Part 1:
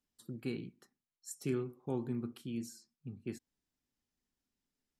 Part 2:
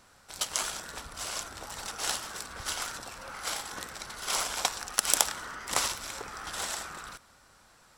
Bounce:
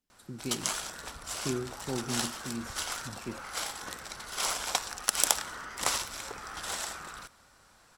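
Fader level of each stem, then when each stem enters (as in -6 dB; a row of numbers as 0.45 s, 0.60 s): +1.5 dB, -1.0 dB; 0.00 s, 0.10 s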